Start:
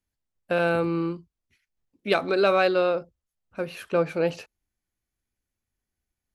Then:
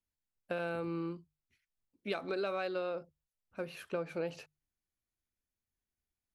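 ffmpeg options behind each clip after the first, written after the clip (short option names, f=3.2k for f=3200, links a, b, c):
-af "bandreject=f=50:t=h:w=6,bandreject=f=100:t=h:w=6,bandreject=f=150:t=h:w=6,acompressor=threshold=-24dB:ratio=6,volume=-8.5dB"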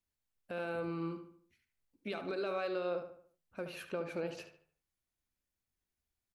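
-filter_complex "[0:a]alimiter=level_in=6dB:limit=-24dB:level=0:latency=1:release=108,volume=-6dB,asplit=2[a][b];[b]adelay=73,lowpass=f=3.2k:p=1,volume=-8dB,asplit=2[c][d];[d]adelay=73,lowpass=f=3.2k:p=1,volume=0.43,asplit=2[e][f];[f]adelay=73,lowpass=f=3.2k:p=1,volume=0.43,asplit=2[g][h];[h]adelay=73,lowpass=f=3.2k:p=1,volume=0.43,asplit=2[i][j];[j]adelay=73,lowpass=f=3.2k:p=1,volume=0.43[k];[a][c][e][g][i][k]amix=inputs=6:normalize=0,volume=1dB"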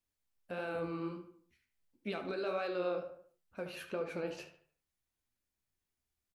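-filter_complex "[0:a]flanger=delay=7.5:depth=9.1:regen=48:speed=1.5:shape=triangular,asplit=2[a][b];[b]adelay=28,volume=-13dB[c];[a][c]amix=inputs=2:normalize=0,volume=4dB"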